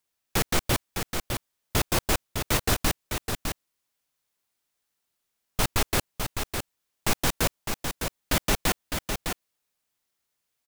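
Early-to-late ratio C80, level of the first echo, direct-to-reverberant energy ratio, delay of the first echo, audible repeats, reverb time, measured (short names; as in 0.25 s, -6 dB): none, -6.0 dB, none, 0.607 s, 1, none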